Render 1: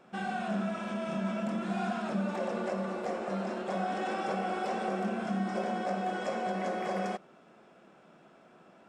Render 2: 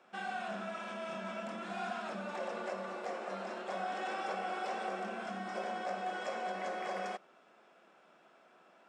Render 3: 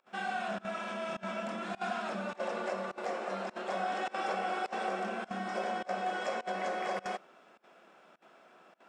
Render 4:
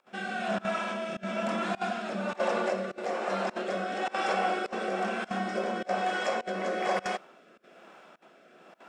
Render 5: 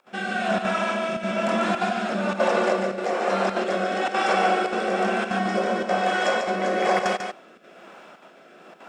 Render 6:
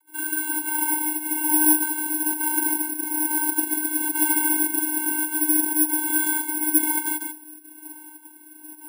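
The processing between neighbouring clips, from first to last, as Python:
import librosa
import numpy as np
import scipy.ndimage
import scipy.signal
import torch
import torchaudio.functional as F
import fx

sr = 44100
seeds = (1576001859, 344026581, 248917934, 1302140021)

y1 = fx.weighting(x, sr, curve='A')
y1 = y1 * librosa.db_to_amplitude(-3.0)
y2 = fx.volume_shaper(y1, sr, bpm=103, per_beat=1, depth_db=-24, release_ms=62.0, shape='slow start')
y2 = y2 * librosa.db_to_amplitude(4.0)
y3 = fx.rotary(y2, sr, hz=1.1)
y3 = y3 * librosa.db_to_amplitude(8.0)
y4 = y3 + 10.0 ** (-6.0 / 20.0) * np.pad(y3, (int(144 * sr / 1000.0), 0))[:len(y3)]
y4 = y4 * librosa.db_to_amplitude(6.5)
y5 = fx.vocoder(y4, sr, bands=32, carrier='square', carrier_hz=308.0)
y5 = (np.kron(scipy.signal.resample_poly(y5, 1, 4), np.eye(4)[0]) * 4)[:len(y5)]
y5 = y5 * librosa.db_to_amplitude(-4.5)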